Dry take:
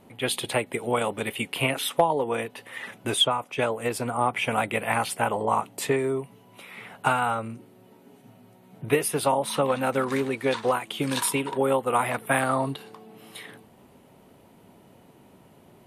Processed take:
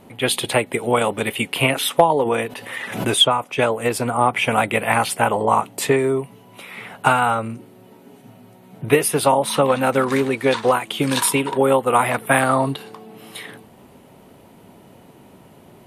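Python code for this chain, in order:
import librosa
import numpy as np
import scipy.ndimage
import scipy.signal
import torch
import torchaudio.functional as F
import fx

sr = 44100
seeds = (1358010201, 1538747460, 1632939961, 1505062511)

y = fx.pre_swell(x, sr, db_per_s=72.0, at=(2.11, 3.16))
y = y * librosa.db_to_amplitude(7.0)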